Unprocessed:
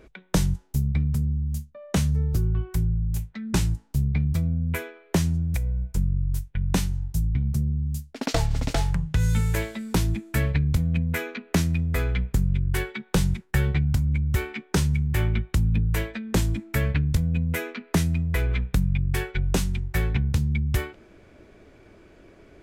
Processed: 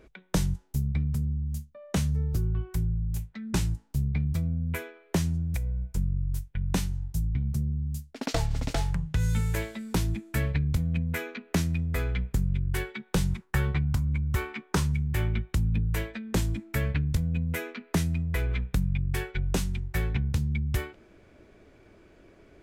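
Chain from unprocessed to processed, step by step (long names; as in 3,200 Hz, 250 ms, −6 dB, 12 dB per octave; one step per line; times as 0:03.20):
0:13.31–0:14.92: parametric band 1,100 Hz +8 dB 0.67 octaves
level −4 dB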